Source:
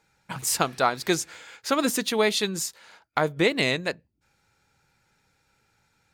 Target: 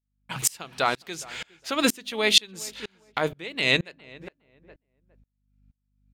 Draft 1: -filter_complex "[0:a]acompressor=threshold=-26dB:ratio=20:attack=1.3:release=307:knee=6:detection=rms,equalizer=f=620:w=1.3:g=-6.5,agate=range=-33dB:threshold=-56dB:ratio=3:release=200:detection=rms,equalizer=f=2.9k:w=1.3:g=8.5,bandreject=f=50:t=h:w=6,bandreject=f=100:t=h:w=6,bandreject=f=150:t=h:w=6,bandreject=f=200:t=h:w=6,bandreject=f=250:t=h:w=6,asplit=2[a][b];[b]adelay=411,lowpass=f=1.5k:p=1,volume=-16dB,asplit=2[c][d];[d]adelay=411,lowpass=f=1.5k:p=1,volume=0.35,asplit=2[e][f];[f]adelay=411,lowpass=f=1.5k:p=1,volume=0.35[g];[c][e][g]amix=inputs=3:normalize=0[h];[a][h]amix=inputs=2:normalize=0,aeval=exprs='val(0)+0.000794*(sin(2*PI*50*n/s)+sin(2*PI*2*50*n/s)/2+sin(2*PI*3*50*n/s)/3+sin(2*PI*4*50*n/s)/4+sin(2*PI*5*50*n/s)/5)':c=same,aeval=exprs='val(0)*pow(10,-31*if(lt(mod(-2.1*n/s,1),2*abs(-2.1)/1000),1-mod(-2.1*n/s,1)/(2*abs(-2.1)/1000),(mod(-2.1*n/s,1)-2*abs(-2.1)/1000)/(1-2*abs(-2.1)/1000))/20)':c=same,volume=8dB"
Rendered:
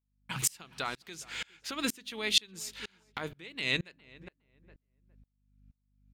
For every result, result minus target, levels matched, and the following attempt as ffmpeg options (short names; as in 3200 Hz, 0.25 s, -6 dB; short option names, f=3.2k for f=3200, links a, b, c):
compressor: peak gain reduction +10.5 dB; 500 Hz band -5.0 dB
-filter_complex "[0:a]acompressor=threshold=-15dB:ratio=20:attack=1.3:release=307:knee=6:detection=rms,equalizer=f=620:w=1.3:g=-6.5,agate=range=-33dB:threshold=-56dB:ratio=3:release=200:detection=rms,equalizer=f=2.9k:w=1.3:g=8.5,bandreject=f=50:t=h:w=6,bandreject=f=100:t=h:w=6,bandreject=f=150:t=h:w=6,bandreject=f=200:t=h:w=6,bandreject=f=250:t=h:w=6,asplit=2[a][b];[b]adelay=411,lowpass=f=1.5k:p=1,volume=-16dB,asplit=2[c][d];[d]adelay=411,lowpass=f=1.5k:p=1,volume=0.35,asplit=2[e][f];[f]adelay=411,lowpass=f=1.5k:p=1,volume=0.35[g];[c][e][g]amix=inputs=3:normalize=0[h];[a][h]amix=inputs=2:normalize=0,aeval=exprs='val(0)+0.000794*(sin(2*PI*50*n/s)+sin(2*PI*2*50*n/s)/2+sin(2*PI*3*50*n/s)/3+sin(2*PI*4*50*n/s)/4+sin(2*PI*5*50*n/s)/5)':c=same,aeval=exprs='val(0)*pow(10,-31*if(lt(mod(-2.1*n/s,1),2*abs(-2.1)/1000),1-mod(-2.1*n/s,1)/(2*abs(-2.1)/1000),(mod(-2.1*n/s,1)-2*abs(-2.1)/1000)/(1-2*abs(-2.1)/1000))/20)':c=same,volume=8dB"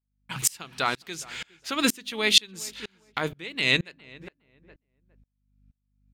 500 Hz band -4.0 dB
-filter_complex "[0:a]acompressor=threshold=-15dB:ratio=20:attack=1.3:release=307:knee=6:detection=rms,agate=range=-33dB:threshold=-56dB:ratio=3:release=200:detection=rms,equalizer=f=2.9k:w=1.3:g=8.5,bandreject=f=50:t=h:w=6,bandreject=f=100:t=h:w=6,bandreject=f=150:t=h:w=6,bandreject=f=200:t=h:w=6,bandreject=f=250:t=h:w=6,asplit=2[a][b];[b]adelay=411,lowpass=f=1.5k:p=1,volume=-16dB,asplit=2[c][d];[d]adelay=411,lowpass=f=1.5k:p=1,volume=0.35,asplit=2[e][f];[f]adelay=411,lowpass=f=1.5k:p=1,volume=0.35[g];[c][e][g]amix=inputs=3:normalize=0[h];[a][h]amix=inputs=2:normalize=0,aeval=exprs='val(0)+0.000794*(sin(2*PI*50*n/s)+sin(2*PI*2*50*n/s)/2+sin(2*PI*3*50*n/s)/3+sin(2*PI*4*50*n/s)/4+sin(2*PI*5*50*n/s)/5)':c=same,aeval=exprs='val(0)*pow(10,-31*if(lt(mod(-2.1*n/s,1),2*abs(-2.1)/1000),1-mod(-2.1*n/s,1)/(2*abs(-2.1)/1000),(mod(-2.1*n/s,1)-2*abs(-2.1)/1000)/(1-2*abs(-2.1)/1000))/20)':c=same,volume=8dB"